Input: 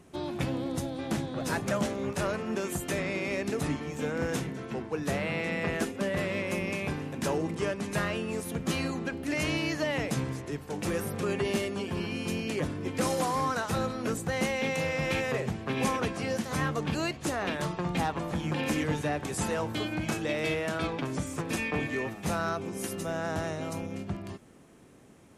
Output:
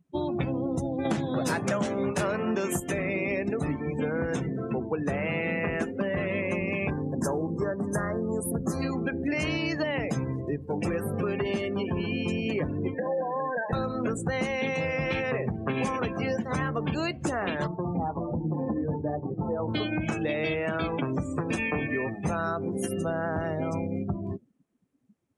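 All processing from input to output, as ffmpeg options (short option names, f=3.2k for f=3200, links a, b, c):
-filter_complex "[0:a]asettb=1/sr,asplit=3[a][b][c];[a]atrim=end=1.054[d];[b]atrim=start=1.05:end=2.8,asetpts=PTS-STARTPTS,afade=t=in:d=0.004:c=qsin,afade=t=out:st=1.746:d=0.004:c=qsin,highpass=100,acontrast=74[e];[c]atrim=start=2.796[f];[d][e]acrossfade=d=0.004:c1=hsin:c2=qsin[g];[g][f]acrossfade=d=0.004:c1=qsin:c2=hsin,asettb=1/sr,asplit=3[h][i][j];[h]atrim=end=6.904[k];[i]atrim=start=6.9:end=8.82,asetpts=PTS-STARTPTS,afade=t=in:d=0.004:c=qsin,afade=t=out:st=1.916:d=0.004:c=qsin,asuperstop=centerf=2900:order=4:qfactor=0.98,highshelf=f=9.7k:g=8[l];[j]atrim=start=8.816[m];[k][l]acrossfade=d=0.004:c1=hsin:c2=qsin[n];[n][m]acrossfade=d=0.004:c1=qsin:c2=hsin,asettb=1/sr,asplit=3[o][p][q];[o]atrim=end=12.944[r];[p]atrim=start=12.94:end=13.73,asetpts=PTS-STARTPTS,afade=t=in:d=0.004:c=qsin,afade=t=out:st=0.786:d=0.004:c=qsin,acompressor=threshold=-30dB:ratio=4:attack=3.2:release=140:knee=1:detection=peak,asuperstop=centerf=1300:order=20:qfactor=2.7,highpass=220,equalizer=f=260:t=q:w=4:g=-5,equalizer=f=380:t=q:w=4:g=-7,equalizer=f=550:t=q:w=4:g=5,equalizer=f=970:t=q:w=4:g=-6,equalizer=f=1.6k:t=q:w=4:g=7,equalizer=f=2.3k:t=q:w=4:g=-8,lowpass=f=2.4k:w=0.5412,lowpass=f=2.4k:w=1.3066[s];[q]atrim=start=13.726[t];[r][s]acrossfade=d=0.004:c1=hsin:c2=qsin[u];[u][t]acrossfade=d=0.004:c1=qsin:c2=hsin,asettb=1/sr,asplit=3[v][w][x];[v]atrim=end=17.674[y];[w]atrim=start=17.67:end=19.68,asetpts=PTS-STARTPTS,afade=t=in:d=0.004:c=qsin,afade=t=out:st=2.006:d=0.004:c=qsin,lowpass=1.1k,flanger=delay=5.6:depth=6.2:regen=-39:speed=1.2:shape=triangular[z];[x]atrim=start=19.676[aa];[y][z]acrossfade=d=0.004:c1=hsin:c2=qsin[ab];[ab][aa]acrossfade=d=0.004:c1=qsin:c2=hsin,afftdn=nr=34:nf=-38,acompressor=threshold=-34dB:ratio=6,volume=8.5dB"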